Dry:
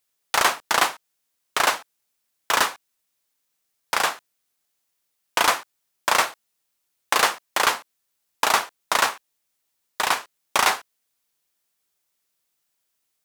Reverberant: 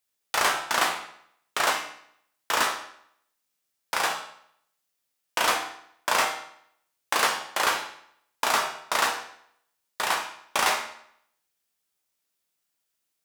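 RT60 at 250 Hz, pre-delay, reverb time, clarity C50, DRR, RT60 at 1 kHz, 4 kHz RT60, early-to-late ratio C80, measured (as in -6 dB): 0.70 s, 13 ms, 0.70 s, 6.5 dB, 1.5 dB, 0.70 s, 0.60 s, 10.0 dB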